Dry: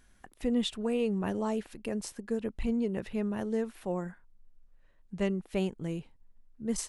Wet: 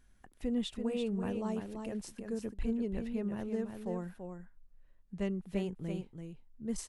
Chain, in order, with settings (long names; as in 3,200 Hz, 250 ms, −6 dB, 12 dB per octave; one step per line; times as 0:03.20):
low-shelf EQ 230 Hz +6.5 dB
on a send: single-tap delay 336 ms −6.5 dB
on the sum: level −7.5 dB